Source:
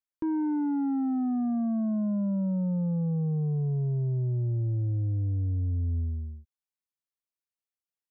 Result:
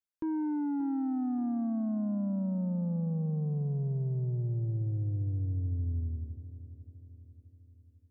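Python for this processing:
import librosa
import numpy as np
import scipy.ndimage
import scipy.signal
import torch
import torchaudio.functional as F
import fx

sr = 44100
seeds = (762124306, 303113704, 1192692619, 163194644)

y = fx.echo_feedback(x, sr, ms=579, feedback_pct=50, wet_db=-14.0)
y = y * librosa.db_to_amplitude(-4.0)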